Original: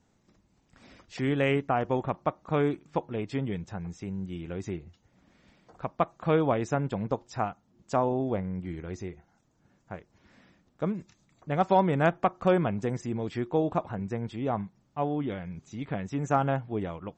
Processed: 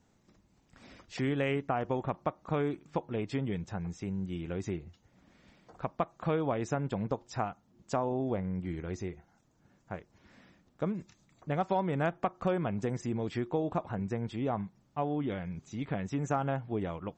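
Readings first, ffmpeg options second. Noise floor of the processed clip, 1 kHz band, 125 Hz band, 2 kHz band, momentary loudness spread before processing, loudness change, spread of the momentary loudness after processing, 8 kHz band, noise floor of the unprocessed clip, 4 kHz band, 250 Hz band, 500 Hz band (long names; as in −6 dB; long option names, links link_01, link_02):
−69 dBFS, −5.5 dB, −3.0 dB, −5.0 dB, 14 LU, −4.5 dB, 9 LU, −1.0 dB, −69 dBFS, −3.5 dB, −3.5 dB, −5.0 dB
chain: -af "acompressor=threshold=-29dB:ratio=2.5"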